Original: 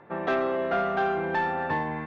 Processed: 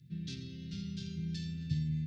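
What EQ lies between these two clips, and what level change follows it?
HPF 86 Hz; Chebyshev band-stop 140–4800 Hz, order 3; +9.0 dB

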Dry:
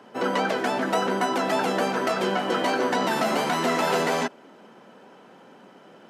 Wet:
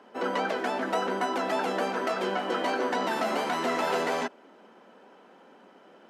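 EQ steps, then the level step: bell 130 Hz -14.5 dB 0.74 oct; high shelf 4700 Hz -6 dB; -3.5 dB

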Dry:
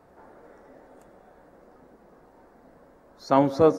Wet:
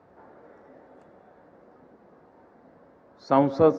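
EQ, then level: HPF 68 Hz 24 dB/oct; air absorption 140 m; 0.0 dB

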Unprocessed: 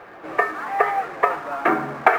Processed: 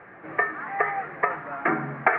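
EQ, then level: synth low-pass 2000 Hz, resonance Q 3; air absorption 140 m; bell 150 Hz +11.5 dB 1.6 oct; -8.5 dB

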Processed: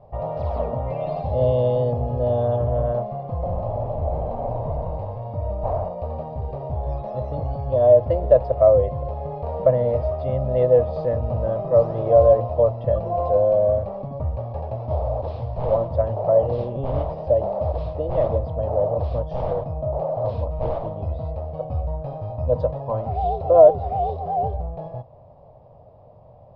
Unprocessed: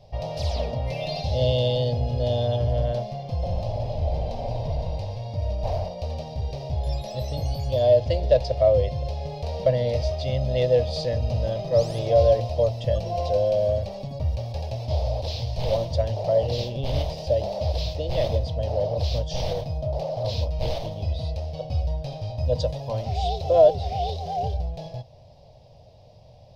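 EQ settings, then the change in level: synth low-pass 1200 Hz, resonance Q 3.7; bell 330 Hz +5.5 dB 2.1 oct; -1.5 dB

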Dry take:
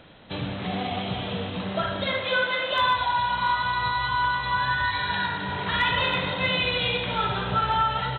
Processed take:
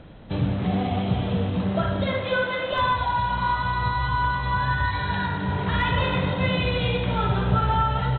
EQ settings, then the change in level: tilt -3 dB/oct; 0.0 dB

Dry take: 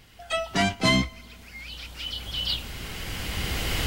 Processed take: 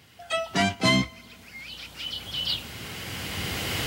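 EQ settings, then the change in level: HPF 83 Hz 24 dB/oct; 0.0 dB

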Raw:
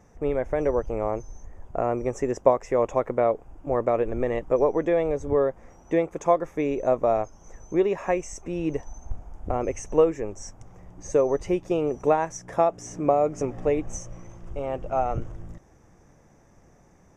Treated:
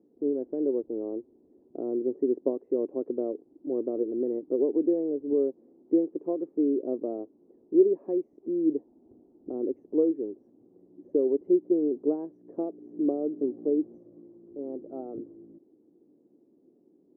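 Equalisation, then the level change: Butterworth band-pass 320 Hz, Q 2.2; +3.5 dB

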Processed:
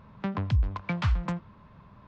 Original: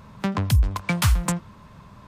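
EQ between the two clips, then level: Gaussian blur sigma 2.2 samples; -6.0 dB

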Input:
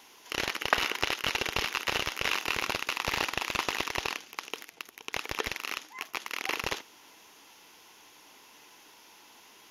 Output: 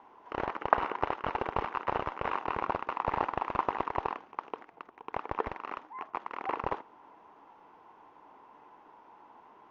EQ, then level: synth low-pass 980 Hz, resonance Q 2; 0.0 dB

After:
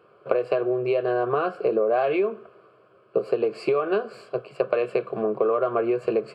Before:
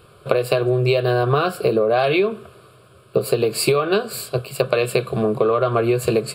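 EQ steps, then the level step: HPF 320 Hz 12 dB/oct; tape spacing loss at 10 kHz 34 dB; bell 3700 Hz -13.5 dB 0.2 oct; -1.5 dB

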